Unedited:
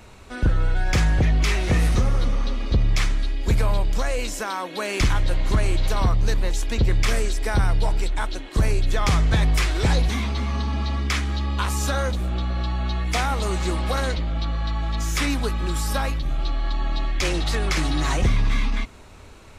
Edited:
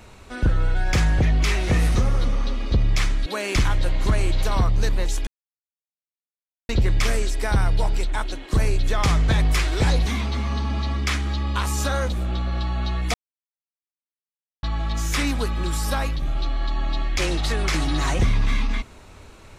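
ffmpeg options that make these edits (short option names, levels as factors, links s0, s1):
-filter_complex "[0:a]asplit=5[s0][s1][s2][s3][s4];[s0]atrim=end=3.262[s5];[s1]atrim=start=4.708:end=6.72,asetpts=PTS-STARTPTS,afade=t=out:st=2.008:d=0.004:c=hsin,apad=pad_dur=1.42[s6];[s2]atrim=start=6.72:end=13.17,asetpts=PTS-STARTPTS,afade=t=in:d=0.004:c=hsin,afade=t=out:st=6.446:d=0.004:c=hsin[s7];[s3]atrim=start=13.17:end=14.66,asetpts=PTS-STARTPTS,volume=0[s8];[s4]atrim=start=14.66,asetpts=PTS-STARTPTS,afade=t=in:d=0.004:c=hsin[s9];[s6][s7][s8][s9]concat=n=4:v=0:a=1[s10];[s5][s10]acrossfade=d=0.004:c1=hsin:c2=hsin"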